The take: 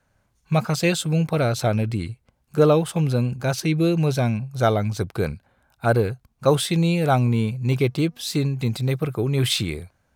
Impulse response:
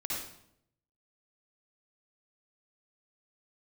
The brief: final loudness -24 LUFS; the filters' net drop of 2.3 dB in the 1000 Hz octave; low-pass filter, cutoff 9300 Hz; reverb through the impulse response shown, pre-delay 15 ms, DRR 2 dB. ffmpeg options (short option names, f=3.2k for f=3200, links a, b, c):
-filter_complex "[0:a]lowpass=9.3k,equalizer=f=1k:t=o:g=-3.5,asplit=2[a][b];[1:a]atrim=start_sample=2205,adelay=15[c];[b][c]afir=irnorm=-1:irlink=0,volume=-5.5dB[d];[a][d]amix=inputs=2:normalize=0,volume=-4dB"